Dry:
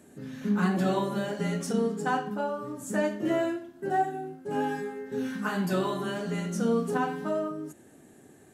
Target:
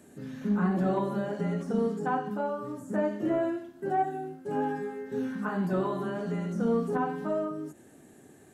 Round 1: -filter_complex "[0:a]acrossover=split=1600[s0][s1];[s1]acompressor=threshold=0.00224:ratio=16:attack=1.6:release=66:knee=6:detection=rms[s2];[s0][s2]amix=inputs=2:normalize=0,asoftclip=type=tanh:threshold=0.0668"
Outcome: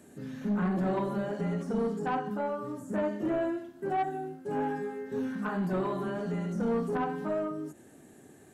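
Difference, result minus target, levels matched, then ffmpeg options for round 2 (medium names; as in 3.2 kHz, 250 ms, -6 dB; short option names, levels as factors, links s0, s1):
saturation: distortion +12 dB
-filter_complex "[0:a]acrossover=split=1600[s0][s1];[s1]acompressor=threshold=0.00224:ratio=16:attack=1.6:release=66:knee=6:detection=rms[s2];[s0][s2]amix=inputs=2:normalize=0,asoftclip=type=tanh:threshold=0.168"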